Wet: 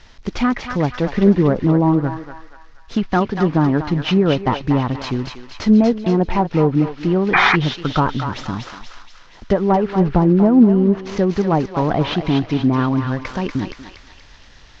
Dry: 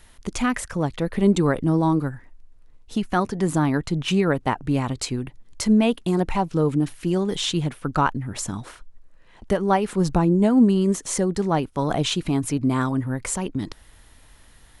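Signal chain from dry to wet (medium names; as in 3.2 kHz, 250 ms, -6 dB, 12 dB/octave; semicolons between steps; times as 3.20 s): CVSD coder 32 kbps; low-pass that closes with the level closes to 980 Hz, closed at -15.5 dBFS; on a send: thinning echo 239 ms, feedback 58%, high-pass 1.1 kHz, level -4 dB; on the sum: painted sound noise, 7.33–7.56 s, 700–2500 Hz -19 dBFS; trim +5.5 dB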